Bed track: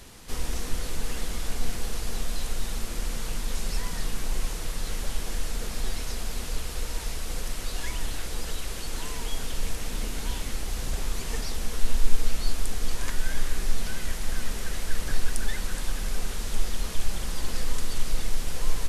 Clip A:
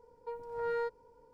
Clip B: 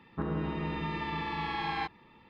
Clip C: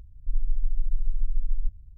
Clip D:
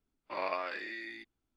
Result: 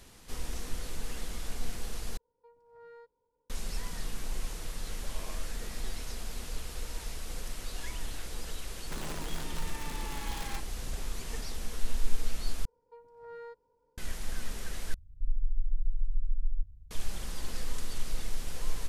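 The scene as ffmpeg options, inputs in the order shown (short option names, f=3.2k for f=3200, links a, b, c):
-filter_complex "[1:a]asplit=2[a][b];[0:a]volume=-7dB[c];[2:a]aeval=exprs='(mod(21.1*val(0)+1,2)-1)/21.1':c=same[d];[c]asplit=4[e][f][g][h];[e]atrim=end=2.174[i];[a]atrim=end=1.33,asetpts=PTS-STARTPTS,volume=-18dB[j];[f]atrim=start=3.496:end=12.654[k];[b]atrim=end=1.33,asetpts=PTS-STARTPTS,volume=-11.5dB[l];[g]atrim=start=13.976:end=14.944[m];[3:a]atrim=end=1.97,asetpts=PTS-STARTPTS,volume=-4.5dB[n];[h]atrim=start=16.906[o];[4:a]atrim=end=1.56,asetpts=PTS-STARTPTS,volume=-16dB,afade=t=in:d=0.004:c=hsin,afade=t=out:st=1.556:d=0.004:c=hsin,adelay=210357S[p];[d]atrim=end=2.29,asetpts=PTS-STARTPTS,volume=-9dB,afade=t=in:d=0.004:c=hsin,afade=t=out:st=2.286:d=0.004:c=hsin,adelay=8730[q];[i][j]acrossfade=d=0.004:c1=hsin:c2=hsin[r];[r][k]acrossfade=d=0.004:c1=hsin:c2=hsin[s];[s][l]acrossfade=d=0.004:c1=hsin:c2=hsin[t];[t][m]acrossfade=d=0.004:c1=hsin:c2=hsin[u];[u][n]acrossfade=d=0.004:c1=hsin:c2=hsin[v];[v][o]acrossfade=d=0.004:c1=hsin:c2=hsin[w];[w][p][q]amix=inputs=3:normalize=0"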